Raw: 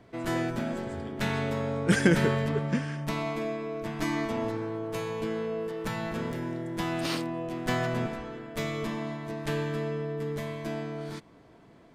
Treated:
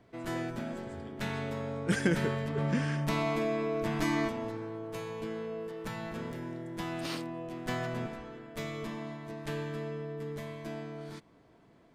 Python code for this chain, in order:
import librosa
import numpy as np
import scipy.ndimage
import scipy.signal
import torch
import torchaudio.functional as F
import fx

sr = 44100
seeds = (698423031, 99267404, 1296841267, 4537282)

y = fx.env_flatten(x, sr, amount_pct=50, at=(2.57, 4.28), fade=0.02)
y = F.gain(torch.from_numpy(y), -6.0).numpy()